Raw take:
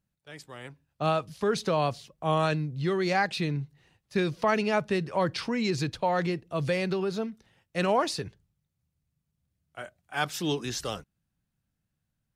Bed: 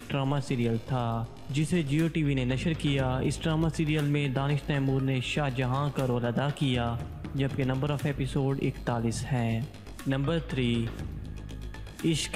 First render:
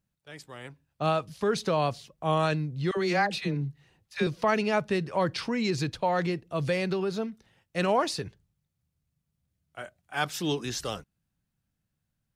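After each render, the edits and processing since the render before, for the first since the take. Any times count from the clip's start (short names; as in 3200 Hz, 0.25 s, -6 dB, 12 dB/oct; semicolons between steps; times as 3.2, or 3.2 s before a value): 2.91–4.27 dispersion lows, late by 62 ms, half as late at 650 Hz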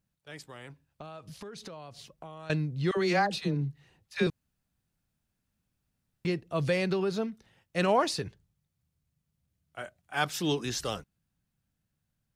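0.45–2.5 compressor 12:1, threshold -40 dBFS; 3.19–3.59 bell 2200 Hz -8 dB 0.74 oct; 4.3–6.25 room tone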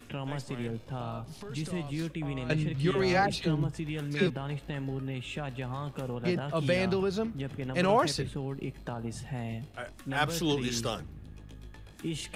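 add bed -8 dB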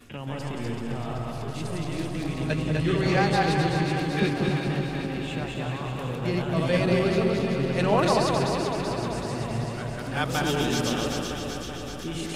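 regenerating reverse delay 0.132 s, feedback 62%, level -1 dB; echo with dull and thin repeats by turns 0.191 s, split 1300 Hz, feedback 82%, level -4.5 dB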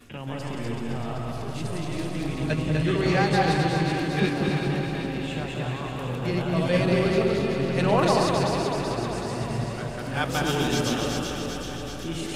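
reverse delay 0.157 s, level -7.5 dB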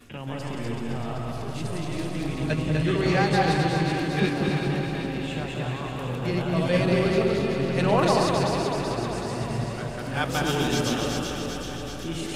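nothing audible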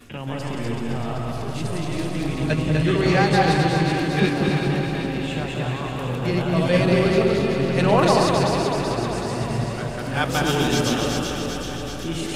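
gain +4 dB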